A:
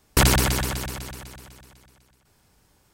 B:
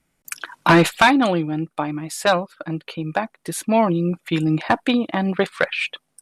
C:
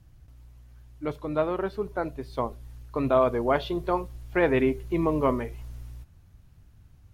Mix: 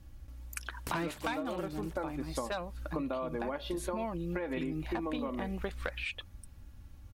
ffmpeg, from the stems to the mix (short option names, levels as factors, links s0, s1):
-filter_complex "[0:a]acompressor=threshold=0.0398:ratio=6,adelay=700,volume=0.299[s0];[1:a]adelay=250,volume=0.355[s1];[2:a]aecho=1:1:3.6:0.63,volume=1.19[s2];[s0][s2]amix=inputs=2:normalize=0,acompressor=threshold=0.0794:ratio=6,volume=1[s3];[s1][s3]amix=inputs=2:normalize=0,acompressor=threshold=0.0224:ratio=6"